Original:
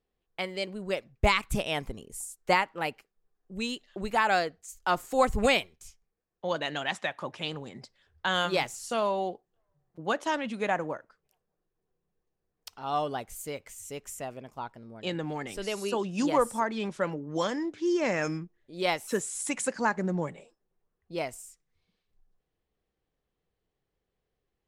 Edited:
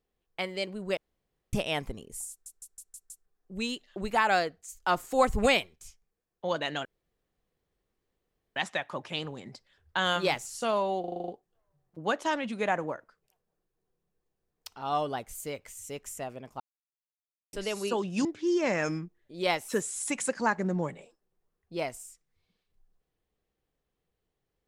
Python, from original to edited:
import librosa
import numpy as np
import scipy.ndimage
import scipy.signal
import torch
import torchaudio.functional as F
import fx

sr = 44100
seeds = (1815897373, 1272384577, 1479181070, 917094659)

y = fx.edit(x, sr, fx.room_tone_fill(start_s=0.97, length_s=0.56),
    fx.stutter_over(start_s=2.3, slice_s=0.16, count=6),
    fx.insert_room_tone(at_s=6.85, length_s=1.71),
    fx.stutter(start_s=9.29, slice_s=0.04, count=8),
    fx.silence(start_s=14.61, length_s=0.93),
    fx.cut(start_s=16.26, length_s=1.38), tone=tone)